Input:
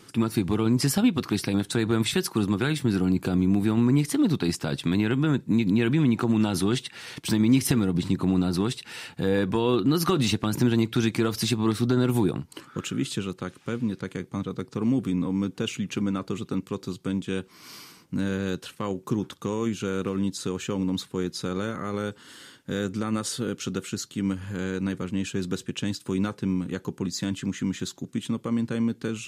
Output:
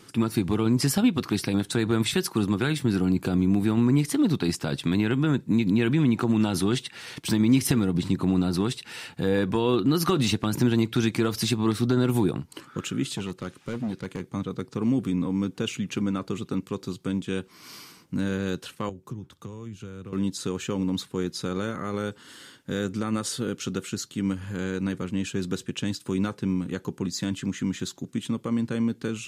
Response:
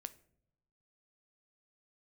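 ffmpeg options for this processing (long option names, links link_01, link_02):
-filter_complex "[0:a]asettb=1/sr,asplit=3[link_01][link_02][link_03];[link_01]atrim=end=13.074[link_04];[link_02]atrim=start=13.07:end=14.25,asetpts=PTS-STARTPTS,afade=type=in:duration=0.004:curve=qsin,afade=type=out:start_time=1.176:duration=0.004:curve=qsin,asoftclip=type=hard:threshold=-25dB[link_05];[link_03]atrim=start=14.246[link_06];[link_04][link_05]acrossfade=duration=0.004:curve1=hsin:curve2=qsin[link_07];[link_07][link_06]acrossfade=duration=0.004:curve1=qsin:curve2=hsin,asettb=1/sr,asplit=3[link_08][link_09][link_10];[link_08]atrim=end=18.894[link_11];[link_09]atrim=start=18.89:end=20.13,asetpts=PTS-STARTPTS,afade=type=in:duration=0.004:curve=qsin,afade=type=out:start_time=1.236:duration=0.004:curve=qsin,acrossover=split=120[link_12][link_13];[link_13]acompressor=threshold=-43dB:ratio=4[link_14];[link_12][link_14]amix=inputs=2:normalize=0[link_15];[link_10]atrim=start=20.126[link_16];[link_11][link_15]acrossfade=duration=0.004:curve1=hsin:curve2=qsin[link_17];[link_17][link_16]acrossfade=duration=0.004:curve1=qsin:curve2=hsin"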